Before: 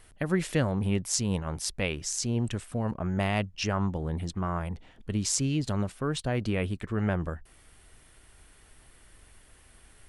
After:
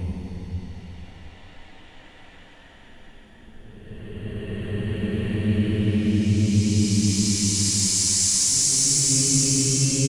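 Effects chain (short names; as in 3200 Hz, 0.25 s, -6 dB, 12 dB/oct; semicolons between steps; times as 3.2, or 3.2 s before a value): hard clip -13.5 dBFS, distortion -37 dB; Paulstretch 15×, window 0.25 s, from 4.75; echo 0.891 s -21 dB; gain +8 dB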